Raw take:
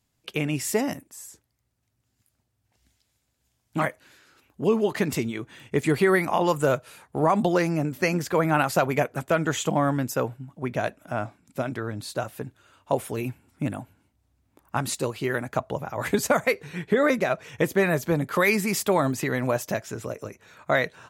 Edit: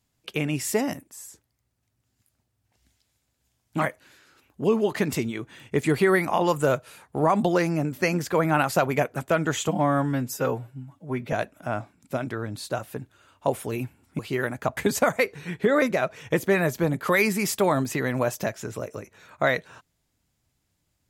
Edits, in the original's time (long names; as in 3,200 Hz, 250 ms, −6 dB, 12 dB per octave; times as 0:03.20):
0:09.68–0:10.78: time-stretch 1.5×
0:13.64–0:15.10: remove
0:15.68–0:16.05: remove